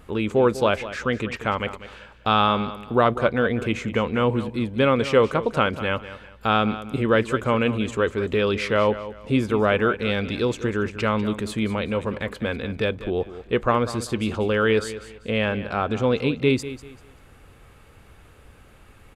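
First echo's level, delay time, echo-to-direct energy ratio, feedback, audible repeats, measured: -14.0 dB, 195 ms, -13.5 dB, 29%, 2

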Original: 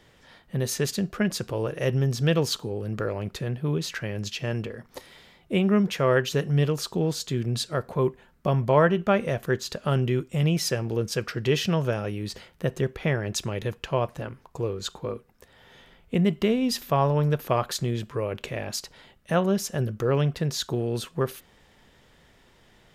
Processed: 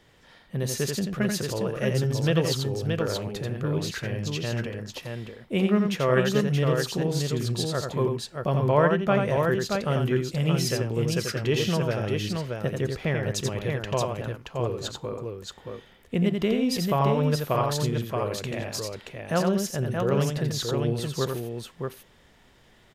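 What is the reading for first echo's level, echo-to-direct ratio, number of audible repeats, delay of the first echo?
-5.0 dB, -1.5 dB, 2, 86 ms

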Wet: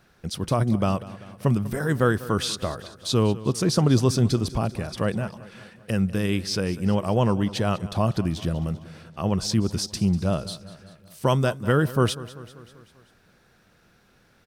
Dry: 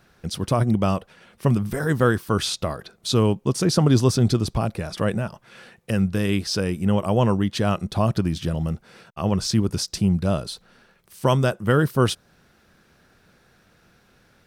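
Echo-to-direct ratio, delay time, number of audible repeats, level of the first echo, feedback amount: -15.5 dB, 195 ms, 4, -17.5 dB, 59%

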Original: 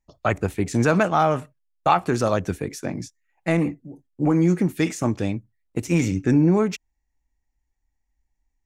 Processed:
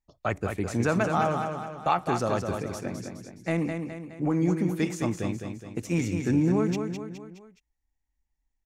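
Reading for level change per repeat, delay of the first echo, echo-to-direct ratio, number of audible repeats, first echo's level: -6.0 dB, 209 ms, -5.0 dB, 4, -6.0 dB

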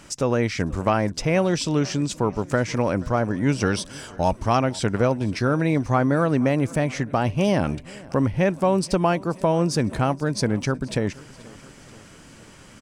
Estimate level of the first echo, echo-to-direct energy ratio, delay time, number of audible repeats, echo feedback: -22.5 dB, -20.5 dB, 479 ms, 3, 60%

